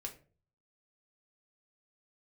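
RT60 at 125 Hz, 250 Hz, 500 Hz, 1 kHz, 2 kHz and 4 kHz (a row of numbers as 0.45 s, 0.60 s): 0.75 s, 0.50 s, 0.50 s, 0.35 s, 0.30 s, 0.25 s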